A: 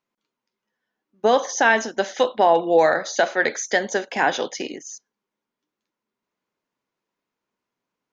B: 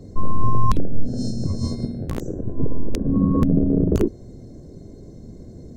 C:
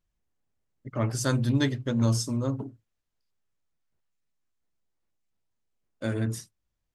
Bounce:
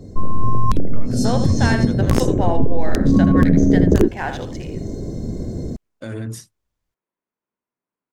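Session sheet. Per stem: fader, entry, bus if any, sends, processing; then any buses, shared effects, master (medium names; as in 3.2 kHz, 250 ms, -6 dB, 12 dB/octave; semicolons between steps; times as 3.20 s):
-6.5 dB, 0.00 s, no send, echo send -8.5 dB, local Wiener filter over 9 samples
+2.5 dB, 0.00 s, no send, no echo send, level rider gain up to 11 dB
+3.0 dB, 0.00 s, no send, no echo send, peak limiter -23.5 dBFS, peak gain reduction 11 dB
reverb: none
echo: delay 79 ms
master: compression, threshold -8 dBFS, peak gain reduction 6 dB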